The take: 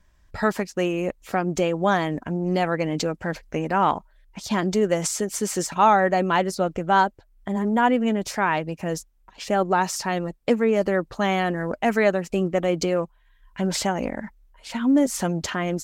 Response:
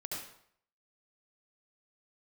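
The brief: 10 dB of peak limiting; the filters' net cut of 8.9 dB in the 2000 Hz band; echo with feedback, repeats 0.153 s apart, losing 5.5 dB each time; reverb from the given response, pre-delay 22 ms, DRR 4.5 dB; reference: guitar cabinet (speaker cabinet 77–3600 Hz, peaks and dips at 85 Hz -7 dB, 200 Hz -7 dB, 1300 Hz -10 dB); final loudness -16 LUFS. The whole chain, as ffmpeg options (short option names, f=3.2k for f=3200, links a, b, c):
-filter_complex "[0:a]equalizer=f=2k:t=o:g=-8.5,alimiter=limit=-17.5dB:level=0:latency=1,aecho=1:1:153|306|459|612|765|918|1071:0.531|0.281|0.149|0.079|0.0419|0.0222|0.0118,asplit=2[a][b];[1:a]atrim=start_sample=2205,adelay=22[c];[b][c]afir=irnorm=-1:irlink=0,volume=-5dB[d];[a][d]amix=inputs=2:normalize=0,highpass=77,equalizer=f=85:t=q:w=4:g=-7,equalizer=f=200:t=q:w=4:g=-7,equalizer=f=1.3k:t=q:w=4:g=-10,lowpass=f=3.6k:w=0.5412,lowpass=f=3.6k:w=1.3066,volume=11.5dB"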